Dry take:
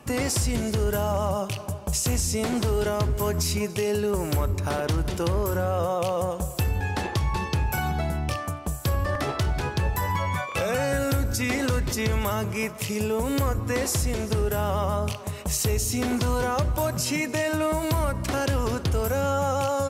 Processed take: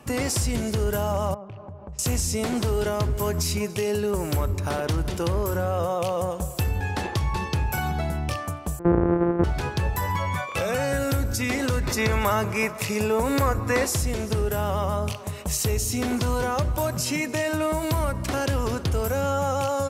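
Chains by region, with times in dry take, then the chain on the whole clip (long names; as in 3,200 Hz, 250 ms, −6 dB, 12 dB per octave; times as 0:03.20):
0:01.34–0:01.99: low-pass filter 1,300 Hz + downward compressor 3 to 1, threshold −38 dBFS
0:08.79–0:09.44: samples sorted by size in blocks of 256 samples + low-pass filter 1,500 Hz 24 dB per octave + parametric band 370 Hz +12.5 dB 0.93 octaves
0:11.83–0:13.85: parametric band 1,300 Hz +6.5 dB 3 octaves + notch filter 3,100 Hz, Q 8
whole clip: no processing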